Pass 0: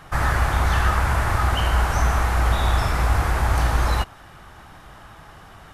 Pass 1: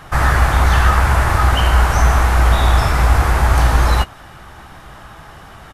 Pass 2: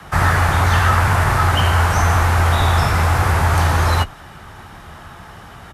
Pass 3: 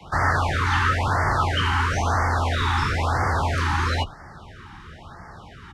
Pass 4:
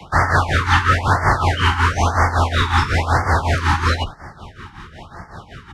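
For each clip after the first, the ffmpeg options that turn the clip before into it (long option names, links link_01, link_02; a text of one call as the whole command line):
ffmpeg -i in.wav -filter_complex "[0:a]asplit=2[link_01][link_02];[link_02]adelay=15,volume=-12dB[link_03];[link_01][link_03]amix=inputs=2:normalize=0,volume=6dB" out.wav
ffmpeg -i in.wav -filter_complex "[0:a]acrossover=split=300|1400|2600[link_01][link_02][link_03][link_04];[link_01]alimiter=limit=-11.5dB:level=0:latency=1[link_05];[link_05][link_02][link_03][link_04]amix=inputs=4:normalize=0,afreqshift=25" out.wav
ffmpeg -i in.wav -filter_complex "[0:a]lowpass=5500,acrossover=split=320[link_01][link_02];[link_01]asoftclip=type=tanh:threshold=-19dB[link_03];[link_03][link_02]amix=inputs=2:normalize=0,afftfilt=real='re*(1-between(b*sr/1024,530*pow(3200/530,0.5+0.5*sin(2*PI*1*pts/sr))/1.41,530*pow(3200/530,0.5+0.5*sin(2*PI*1*pts/sr))*1.41))':imag='im*(1-between(b*sr/1024,530*pow(3200/530,0.5+0.5*sin(2*PI*1*pts/sr))/1.41,530*pow(3200/530,0.5+0.5*sin(2*PI*1*pts/sr))*1.41))':win_size=1024:overlap=0.75,volume=-3.5dB" out.wav
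ffmpeg -i in.wav -af "tremolo=f=5.4:d=0.75,volume=8.5dB" out.wav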